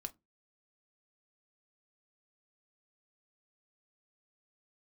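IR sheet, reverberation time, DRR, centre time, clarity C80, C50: non-exponential decay, 8.0 dB, 4 ms, 34.0 dB, 25.0 dB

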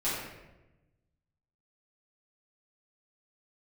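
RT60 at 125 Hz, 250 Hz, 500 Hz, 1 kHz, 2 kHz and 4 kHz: 1.7, 1.4, 1.1, 0.90, 0.90, 0.70 seconds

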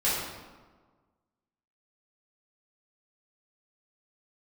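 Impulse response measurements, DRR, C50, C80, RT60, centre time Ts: −11.0 dB, −0.5 dB, 2.5 dB, 1.4 s, 82 ms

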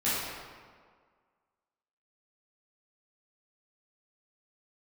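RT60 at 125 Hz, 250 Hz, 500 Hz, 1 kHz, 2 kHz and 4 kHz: 1.6, 1.7, 1.8, 1.8, 1.4, 1.1 seconds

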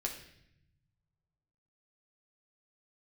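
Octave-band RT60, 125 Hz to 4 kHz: 2.3, 1.5, 0.80, 0.65, 0.85, 0.75 seconds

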